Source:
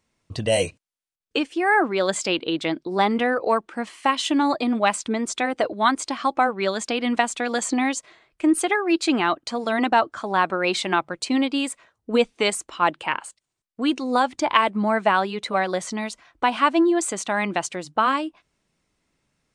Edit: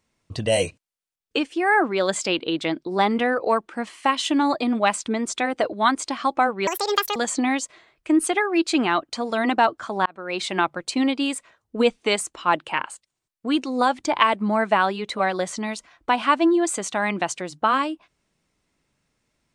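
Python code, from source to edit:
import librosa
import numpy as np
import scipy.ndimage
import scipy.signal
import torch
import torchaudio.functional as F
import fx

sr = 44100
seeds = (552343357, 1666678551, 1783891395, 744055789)

y = fx.edit(x, sr, fx.speed_span(start_s=6.67, length_s=0.83, speed=1.7),
    fx.fade_in_span(start_s=10.4, length_s=0.52), tone=tone)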